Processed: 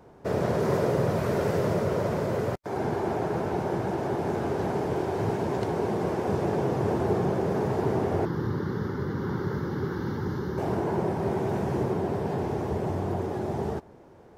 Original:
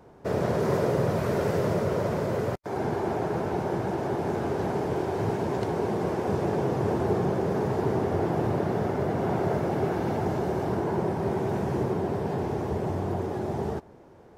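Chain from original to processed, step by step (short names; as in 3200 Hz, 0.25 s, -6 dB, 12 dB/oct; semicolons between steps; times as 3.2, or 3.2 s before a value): 8.25–10.58 fixed phaser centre 2500 Hz, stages 6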